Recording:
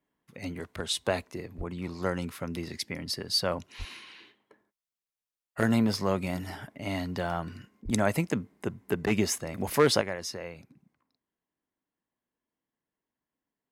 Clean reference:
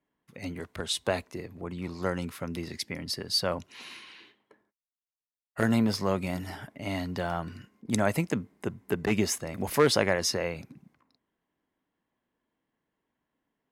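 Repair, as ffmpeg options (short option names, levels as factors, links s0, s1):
-filter_complex "[0:a]asplit=3[s0][s1][s2];[s0]afade=t=out:st=1.57:d=0.02[s3];[s1]highpass=f=140:w=0.5412,highpass=f=140:w=1.3066,afade=t=in:st=1.57:d=0.02,afade=t=out:st=1.69:d=0.02[s4];[s2]afade=t=in:st=1.69:d=0.02[s5];[s3][s4][s5]amix=inputs=3:normalize=0,asplit=3[s6][s7][s8];[s6]afade=t=out:st=3.78:d=0.02[s9];[s7]highpass=f=140:w=0.5412,highpass=f=140:w=1.3066,afade=t=in:st=3.78:d=0.02,afade=t=out:st=3.9:d=0.02[s10];[s8]afade=t=in:st=3.9:d=0.02[s11];[s9][s10][s11]amix=inputs=3:normalize=0,asplit=3[s12][s13][s14];[s12]afade=t=out:st=7.84:d=0.02[s15];[s13]highpass=f=140:w=0.5412,highpass=f=140:w=1.3066,afade=t=in:st=7.84:d=0.02,afade=t=out:st=7.96:d=0.02[s16];[s14]afade=t=in:st=7.96:d=0.02[s17];[s15][s16][s17]amix=inputs=3:normalize=0,asetnsamples=n=441:p=0,asendcmd='10.01 volume volume 8.5dB',volume=1"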